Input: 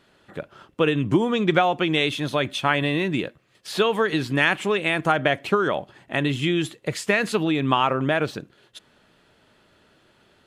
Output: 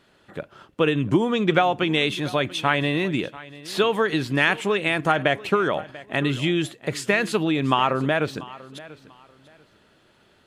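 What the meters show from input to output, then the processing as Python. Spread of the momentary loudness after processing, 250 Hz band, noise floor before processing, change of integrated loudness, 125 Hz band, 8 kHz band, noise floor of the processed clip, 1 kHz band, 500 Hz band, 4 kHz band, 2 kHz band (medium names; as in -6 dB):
18 LU, 0.0 dB, -60 dBFS, 0.0 dB, 0.0 dB, 0.0 dB, -59 dBFS, 0.0 dB, 0.0 dB, 0.0 dB, 0.0 dB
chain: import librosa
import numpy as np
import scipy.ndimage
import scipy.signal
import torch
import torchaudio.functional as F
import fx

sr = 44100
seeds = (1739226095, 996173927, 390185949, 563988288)

y = fx.echo_feedback(x, sr, ms=690, feedback_pct=24, wet_db=-19)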